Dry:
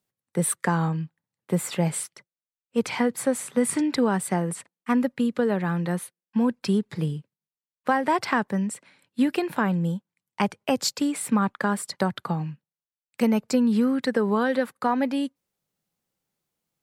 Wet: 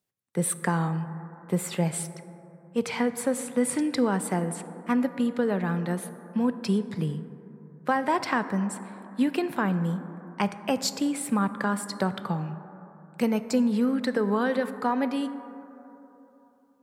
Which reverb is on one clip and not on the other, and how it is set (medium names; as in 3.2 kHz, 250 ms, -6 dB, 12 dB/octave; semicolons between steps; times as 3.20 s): plate-style reverb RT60 3.4 s, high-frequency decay 0.25×, DRR 11 dB; trim -2.5 dB